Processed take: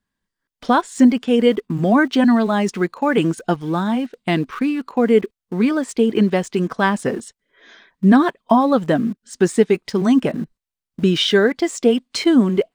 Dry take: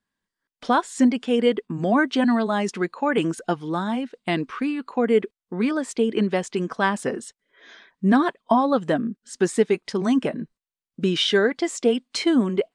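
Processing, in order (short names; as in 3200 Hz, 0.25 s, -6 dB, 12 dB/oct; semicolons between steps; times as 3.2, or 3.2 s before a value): low shelf 150 Hz +9.5 dB; in parallel at -10.5 dB: sample gate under -31 dBFS; on the sum: gain +1 dB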